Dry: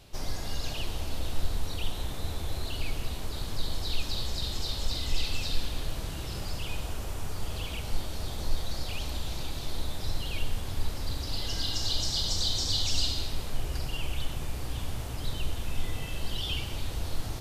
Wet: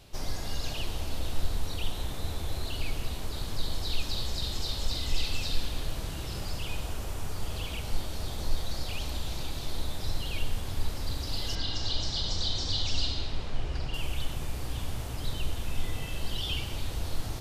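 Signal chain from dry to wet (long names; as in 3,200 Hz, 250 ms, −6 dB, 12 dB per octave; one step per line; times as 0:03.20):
0:11.55–0:13.94: low-pass filter 4,500 Hz 12 dB per octave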